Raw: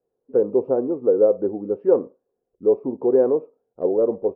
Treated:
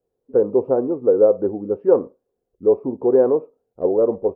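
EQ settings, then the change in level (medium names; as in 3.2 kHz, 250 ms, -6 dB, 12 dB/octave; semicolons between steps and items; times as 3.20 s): dynamic bell 1.1 kHz, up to +5 dB, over -30 dBFS, Q 0.77; peaking EQ 68 Hz +4.5 dB 0.97 oct; bass shelf 110 Hz +8 dB; 0.0 dB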